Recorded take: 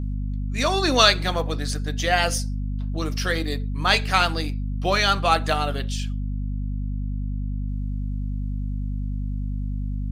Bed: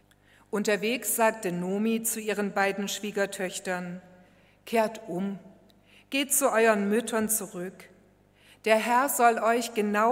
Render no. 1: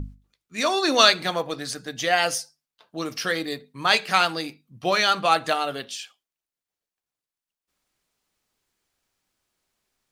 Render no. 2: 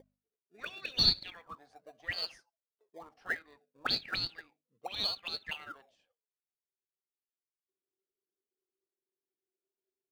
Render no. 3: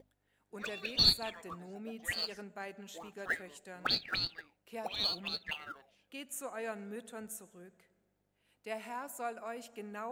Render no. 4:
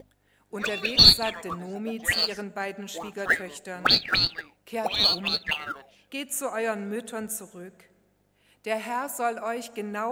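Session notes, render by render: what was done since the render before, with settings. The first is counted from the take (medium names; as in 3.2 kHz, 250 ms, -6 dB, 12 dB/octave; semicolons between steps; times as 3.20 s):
hum notches 50/100/150/200/250 Hz
auto-wah 380–4400 Hz, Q 16, up, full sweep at -16.5 dBFS; in parallel at -11.5 dB: decimation with a swept rate 33×, swing 60% 0.33 Hz
add bed -18.5 dB
trim +12 dB; peak limiter -1 dBFS, peak gain reduction 1 dB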